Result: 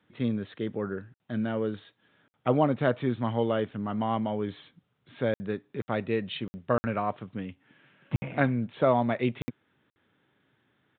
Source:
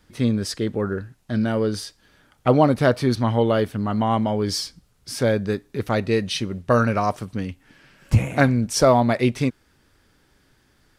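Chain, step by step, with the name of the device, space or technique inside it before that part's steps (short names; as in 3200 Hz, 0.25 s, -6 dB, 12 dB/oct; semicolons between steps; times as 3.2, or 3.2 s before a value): call with lost packets (HPF 110 Hz 24 dB/oct; downsampling 8000 Hz; packet loss packets of 60 ms); gain -7.5 dB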